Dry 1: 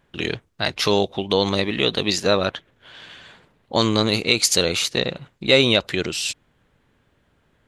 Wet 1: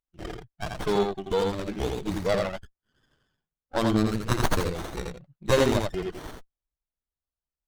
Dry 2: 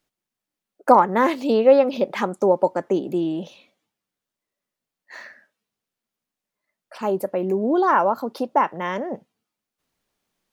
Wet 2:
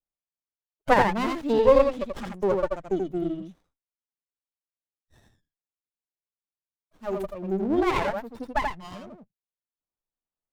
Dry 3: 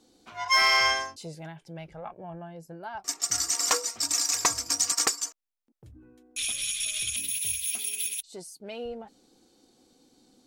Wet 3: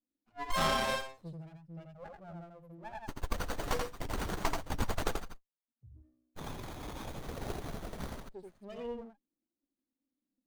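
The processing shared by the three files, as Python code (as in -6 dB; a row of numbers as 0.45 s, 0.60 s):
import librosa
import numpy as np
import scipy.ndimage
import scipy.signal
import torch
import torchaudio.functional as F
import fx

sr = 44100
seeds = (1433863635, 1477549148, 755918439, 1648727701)

y = fx.bin_expand(x, sr, power=2.0)
y = y + 10.0 ** (-3.5 / 20.0) * np.pad(y, (int(84 * sr / 1000.0), 0))[:len(y)]
y = fx.running_max(y, sr, window=17)
y = y * 10.0 ** (-1.5 / 20.0)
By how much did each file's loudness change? -7.0 LU, -4.5 LU, -13.0 LU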